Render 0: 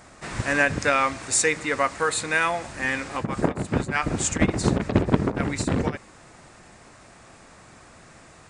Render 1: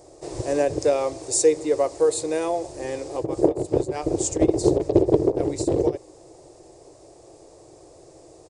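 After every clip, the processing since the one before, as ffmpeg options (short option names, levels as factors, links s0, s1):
-af "firequalizer=gain_entry='entry(140,0);entry(220,-16);entry(320,12);entry(460,12);entry(1400,-17);entry(4900,2)':delay=0.05:min_phase=1,volume=0.708"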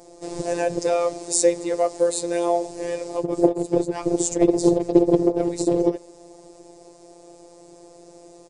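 -af "afftfilt=real='hypot(re,im)*cos(PI*b)':imag='0':win_size=1024:overlap=0.75,volume=1.68"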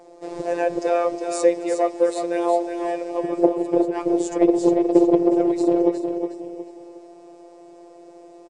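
-af "bass=f=250:g=-11,treble=f=4000:g=-15,aecho=1:1:363|726|1089|1452:0.447|0.156|0.0547|0.0192,volume=1.26"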